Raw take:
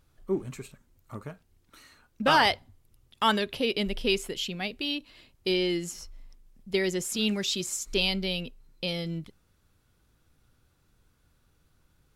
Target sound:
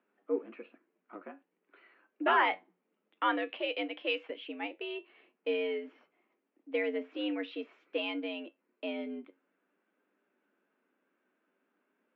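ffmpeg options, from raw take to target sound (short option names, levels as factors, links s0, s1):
-filter_complex "[0:a]flanger=delay=9.3:depth=2.2:regen=67:speed=0.5:shape=triangular,highpass=f=170:t=q:w=0.5412,highpass=f=170:t=q:w=1.307,lowpass=f=2600:t=q:w=0.5176,lowpass=f=2600:t=q:w=0.7071,lowpass=f=2600:t=q:w=1.932,afreqshift=88,asettb=1/sr,asplit=3[s0][s1][s2];[s0]atrim=end=3.504[s3];[s1]atrim=start=3.5:end=4.3,asetpts=PTS-STARTPTS,afade=t=in:d=0.004:c=qsin,afade=t=out:st=0.796:d=0.004:c=qsin,aemphasis=mode=production:type=riaa[s4];[s2]atrim=start=4.296[s5];[s3][s4]acrossfade=d=0.004:c1=hsin:c2=qsin[s6];[s6][s5]acrossfade=d=0.004:c1=qsin:c2=hsin"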